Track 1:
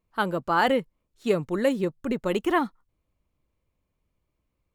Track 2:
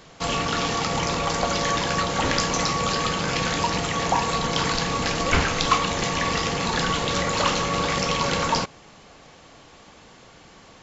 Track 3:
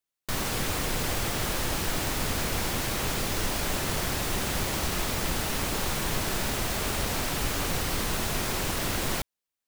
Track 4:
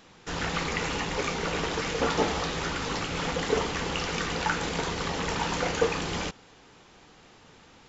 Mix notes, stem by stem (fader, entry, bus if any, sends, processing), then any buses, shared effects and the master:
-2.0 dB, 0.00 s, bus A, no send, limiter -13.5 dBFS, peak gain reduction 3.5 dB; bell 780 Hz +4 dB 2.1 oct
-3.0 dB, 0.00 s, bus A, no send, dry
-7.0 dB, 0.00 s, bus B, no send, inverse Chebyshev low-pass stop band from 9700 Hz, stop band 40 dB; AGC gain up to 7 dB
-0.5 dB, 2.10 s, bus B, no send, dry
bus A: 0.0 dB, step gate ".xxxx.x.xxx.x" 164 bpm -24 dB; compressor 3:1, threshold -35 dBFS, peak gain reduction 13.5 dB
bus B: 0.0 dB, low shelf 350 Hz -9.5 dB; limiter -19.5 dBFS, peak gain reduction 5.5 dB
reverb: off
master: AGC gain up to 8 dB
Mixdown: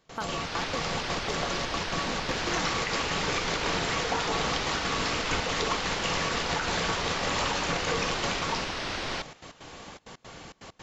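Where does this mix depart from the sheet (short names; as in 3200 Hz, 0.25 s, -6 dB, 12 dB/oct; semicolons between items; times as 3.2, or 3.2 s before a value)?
stem 2 -3.0 dB -> +4.0 dB; master: missing AGC gain up to 8 dB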